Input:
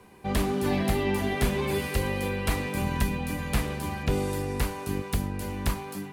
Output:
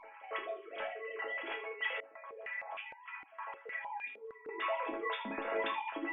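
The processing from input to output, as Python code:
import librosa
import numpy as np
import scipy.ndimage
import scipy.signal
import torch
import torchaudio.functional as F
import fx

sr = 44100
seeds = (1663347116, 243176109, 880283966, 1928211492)

y = fx.sine_speech(x, sr)
y = fx.over_compress(y, sr, threshold_db=-34.0, ratio=-1.0)
y = fx.resonator_bank(y, sr, root=57, chord='major', decay_s=0.24)
y = fx.room_early_taps(y, sr, ms=(29, 78), db=(-7.0, -11.0))
y = fx.filter_held_bandpass(y, sr, hz=6.5, low_hz=300.0, high_hz=2700.0, at=(2.0, 4.49))
y = y * librosa.db_to_amplitude(10.0)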